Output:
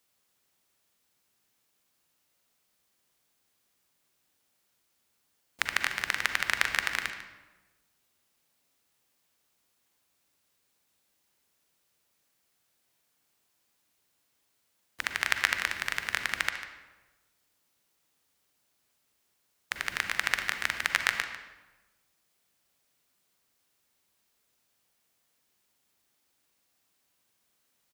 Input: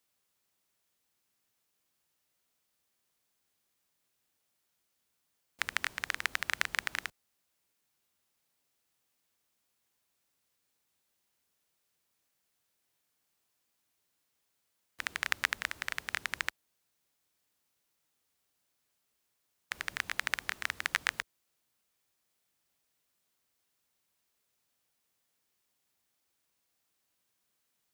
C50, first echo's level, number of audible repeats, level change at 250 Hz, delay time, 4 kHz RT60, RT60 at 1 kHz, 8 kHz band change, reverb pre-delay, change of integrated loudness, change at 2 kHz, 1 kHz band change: 7.0 dB, -14.5 dB, 1, +6.0 dB, 147 ms, 0.80 s, 1.1 s, +5.0 dB, 38 ms, +5.0 dB, +5.5 dB, +5.5 dB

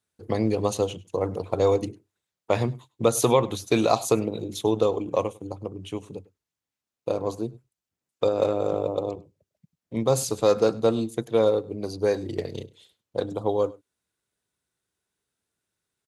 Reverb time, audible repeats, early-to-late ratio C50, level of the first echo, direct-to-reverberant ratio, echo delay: no reverb, 1, no reverb, -22.5 dB, no reverb, 101 ms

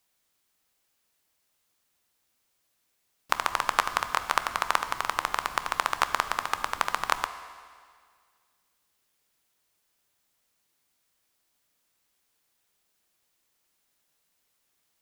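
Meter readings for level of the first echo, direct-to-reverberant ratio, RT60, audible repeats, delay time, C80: no echo, 9.5 dB, 1.9 s, no echo, no echo, 12.0 dB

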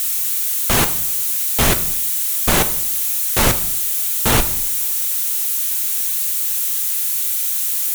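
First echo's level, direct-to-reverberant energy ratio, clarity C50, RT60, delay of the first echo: no echo, 8.5 dB, 13.0 dB, 0.70 s, no echo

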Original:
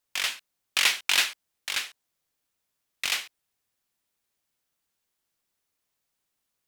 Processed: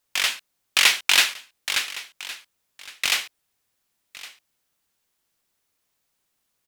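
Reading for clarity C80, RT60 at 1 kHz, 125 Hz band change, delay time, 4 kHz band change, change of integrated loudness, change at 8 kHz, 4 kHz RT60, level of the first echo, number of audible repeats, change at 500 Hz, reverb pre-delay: no reverb, no reverb, no reading, 1113 ms, +5.5 dB, +5.5 dB, +5.5 dB, no reverb, -18.0 dB, 1, +5.5 dB, no reverb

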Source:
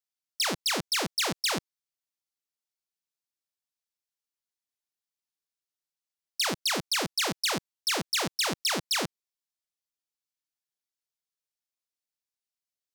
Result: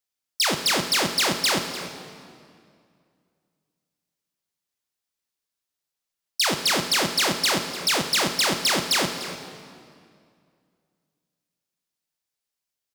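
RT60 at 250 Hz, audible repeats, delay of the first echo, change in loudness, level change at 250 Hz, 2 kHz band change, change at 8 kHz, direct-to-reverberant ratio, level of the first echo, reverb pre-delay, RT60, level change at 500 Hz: 2.5 s, 1, 298 ms, +6.5 dB, +6.5 dB, +7.0 dB, +6.0 dB, 5.5 dB, -14.0 dB, 9 ms, 2.3 s, +7.0 dB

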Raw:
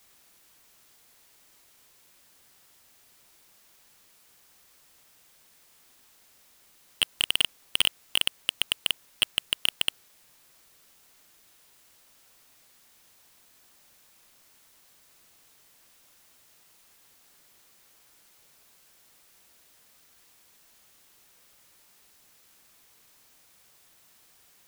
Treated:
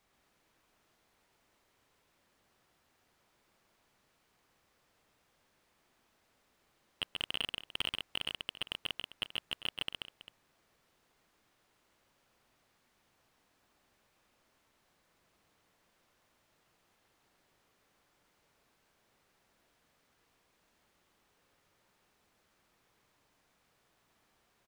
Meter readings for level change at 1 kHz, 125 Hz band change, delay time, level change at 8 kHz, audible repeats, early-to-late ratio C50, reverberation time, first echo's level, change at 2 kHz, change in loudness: -5.5 dB, -4.0 dB, 134 ms, -19.5 dB, 2, no reverb, no reverb, -3.5 dB, -10.0 dB, -11.5 dB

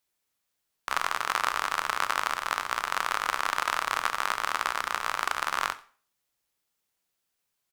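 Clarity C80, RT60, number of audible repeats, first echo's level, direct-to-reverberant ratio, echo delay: 20.0 dB, 0.40 s, 1, -23.5 dB, 11.5 dB, 90 ms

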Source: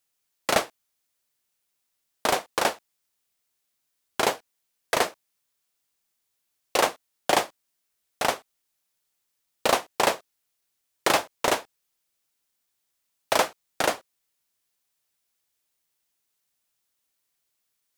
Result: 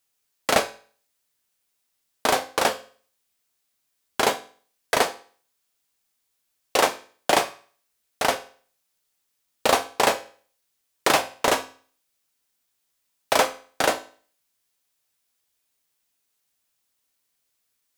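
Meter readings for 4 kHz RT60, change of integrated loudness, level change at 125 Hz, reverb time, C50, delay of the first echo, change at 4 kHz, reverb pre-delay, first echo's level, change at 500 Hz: 0.45 s, +2.5 dB, +2.0 dB, 0.45 s, 16.0 dB, no echo, +2.5 dB, 4 ms, no echo, +2.5 dB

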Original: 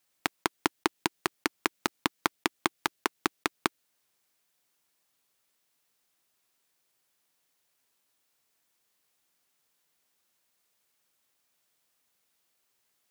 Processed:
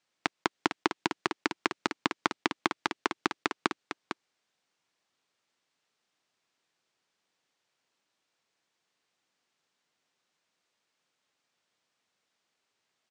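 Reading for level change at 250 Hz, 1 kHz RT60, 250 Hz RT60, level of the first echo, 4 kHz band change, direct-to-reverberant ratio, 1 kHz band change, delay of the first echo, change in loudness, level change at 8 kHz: +0.5 dB, no reverb, no reverb, -8.5 dB, -1.0 dB, no reverb, +0.5 dB, 453 ms, -0.5 dB, -6.5 dB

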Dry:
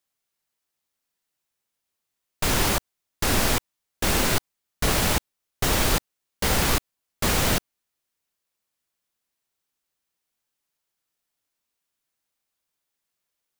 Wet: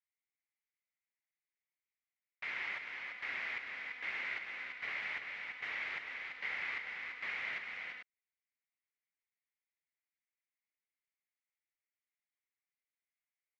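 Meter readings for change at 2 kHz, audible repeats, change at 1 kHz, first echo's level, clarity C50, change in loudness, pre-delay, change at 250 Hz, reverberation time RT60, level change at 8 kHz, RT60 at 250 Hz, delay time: -7.5 dB, 2, -20.5 dB, -6.0 dB, no reverb, -16.0 dB, no reverb, -34.5 dB, no reverb, under -40 dB, no reverb, 340 ms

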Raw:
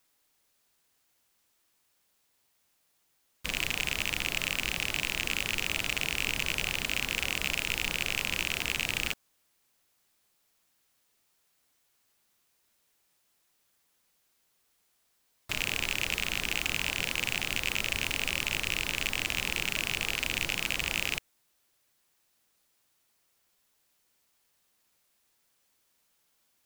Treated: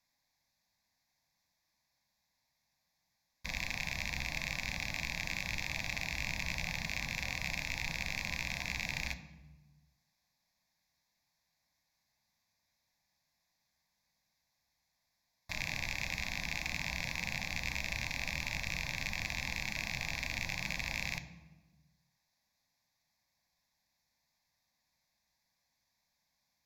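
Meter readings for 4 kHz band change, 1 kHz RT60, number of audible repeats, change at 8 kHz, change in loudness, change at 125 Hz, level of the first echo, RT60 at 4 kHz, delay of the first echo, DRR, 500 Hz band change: -10.5 dB, 1.1 s, no echo, -9.0 dB, -7.0 dB, -0.5 dB, no echo, 0.80 s, no echo, 9.0 dB, -8.5 dB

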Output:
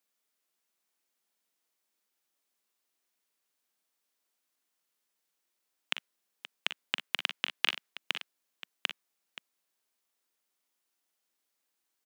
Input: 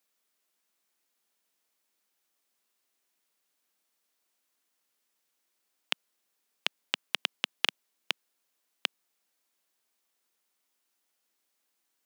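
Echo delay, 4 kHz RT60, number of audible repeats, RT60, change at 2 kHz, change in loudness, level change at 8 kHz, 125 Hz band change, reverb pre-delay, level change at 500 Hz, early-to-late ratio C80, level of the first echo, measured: 43 ms, no reverb, 2, no reverb, +1.0 dB, -0.5 dB, -3.5 dB, no reading, no reverb, -3.0 dB, no reverb, -11.5 dB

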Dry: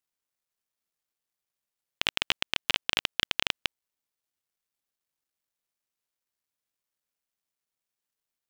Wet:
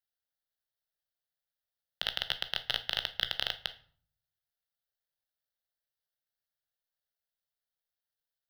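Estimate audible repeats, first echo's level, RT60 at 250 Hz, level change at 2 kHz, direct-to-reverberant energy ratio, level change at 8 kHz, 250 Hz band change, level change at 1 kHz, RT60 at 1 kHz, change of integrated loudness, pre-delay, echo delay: no echo, no echo, 0.70 s, -7.0 dB, 10.0 dB, -12.0 dB, -14.0 dB, -6.0 dB, 0.50 s, -4.5 dB, 15 ms, no echo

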